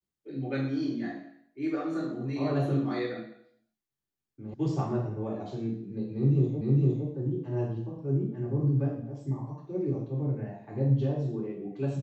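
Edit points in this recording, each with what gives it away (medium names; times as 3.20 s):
4.54 s: sound stops dead
6.61 s: repeat of the last 0.46 s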